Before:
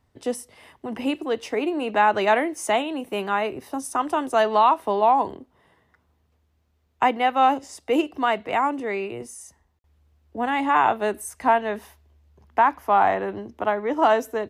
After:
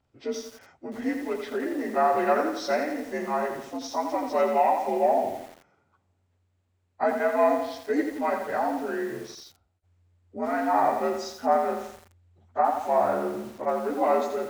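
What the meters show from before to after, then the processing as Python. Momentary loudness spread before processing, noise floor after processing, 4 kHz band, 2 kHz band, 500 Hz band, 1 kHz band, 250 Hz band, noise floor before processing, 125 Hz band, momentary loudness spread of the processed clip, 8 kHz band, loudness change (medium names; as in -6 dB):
12 LU, -72 dBFS, -8.5 dB, -7.0 dB, -1.0 dB, -5.5 dB, -2.5 dB, -67 dBFS, no reading, 12 LU, -7.0 dB, -4.0 dB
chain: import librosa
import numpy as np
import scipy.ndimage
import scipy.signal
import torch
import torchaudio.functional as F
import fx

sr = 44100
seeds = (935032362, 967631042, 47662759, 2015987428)

y = fx.partial_stretch(x, sr, pct=85)
y = fx.echo_crushed(y, sr, ms=85, feedback_pct=55, bits=7, wet_db=-6.0)
y = y * librosa.db_to_amplitude(-3.0)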